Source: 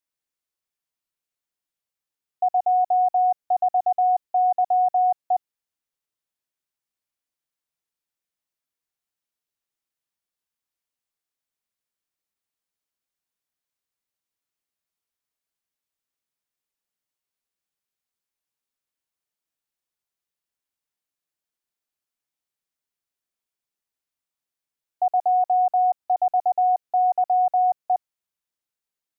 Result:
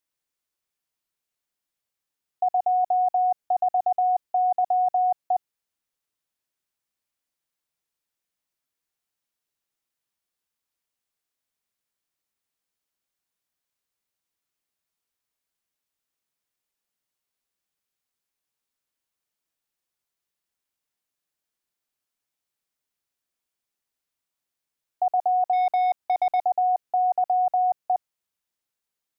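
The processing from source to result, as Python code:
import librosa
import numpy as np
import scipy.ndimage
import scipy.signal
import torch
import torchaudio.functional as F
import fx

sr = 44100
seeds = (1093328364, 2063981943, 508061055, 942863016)

y = fx.leveller(x, sr, passes=1, at=(25.53, 26.4))
y = fx.level_steps(y, sr, step_db=13)
y = y * 10.0 ** (5.0 / 20.0)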